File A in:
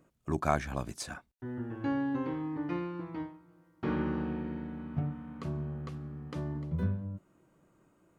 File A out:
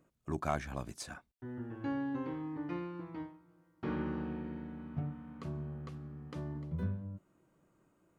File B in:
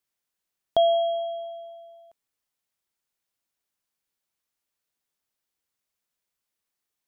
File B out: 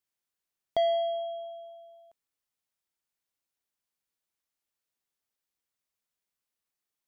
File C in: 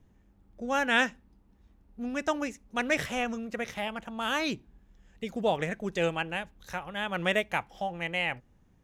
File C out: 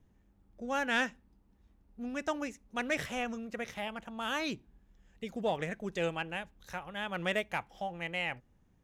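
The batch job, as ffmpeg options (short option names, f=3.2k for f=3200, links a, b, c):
-af "asoftclip=type=tanh:threshold=-13.5dB,volume=-4.5dB"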